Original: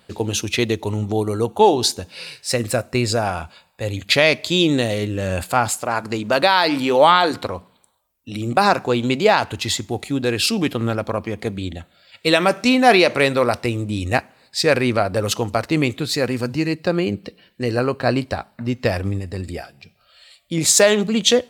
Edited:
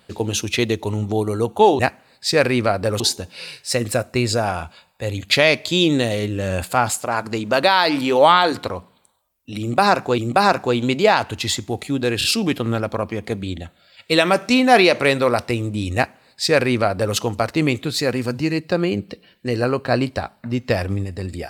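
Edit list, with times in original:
0:08.39–0:08.97: repeat, 2 plays
0:10.39: stutter 0.03 s, 3 plays
0:14.10–0:15.31: duplicate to 0:01.79

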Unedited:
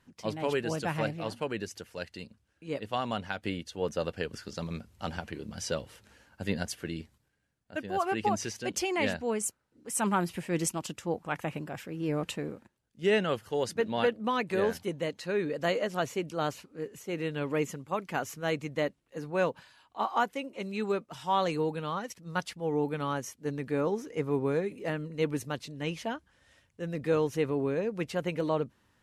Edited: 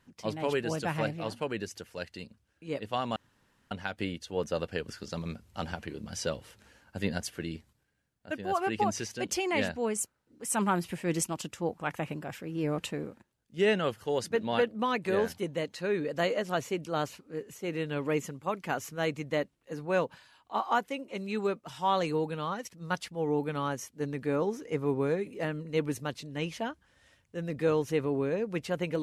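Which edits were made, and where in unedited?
0:03.16: splice in room tone 0.55 s

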